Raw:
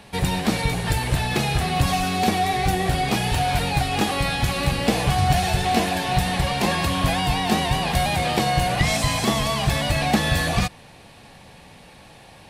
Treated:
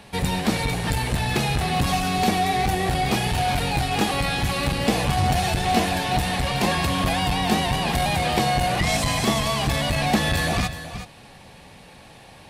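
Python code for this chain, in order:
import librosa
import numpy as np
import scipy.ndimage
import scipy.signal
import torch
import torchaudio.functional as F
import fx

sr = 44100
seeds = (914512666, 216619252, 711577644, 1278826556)

y = x + 10.0 ** (-12.5 / 20.0) * np.pad(x, (int(373 * sr / 1000.0), 0))[:len(x)]
y = fx.transformer_sat(y, sr, knee_hz=230.0)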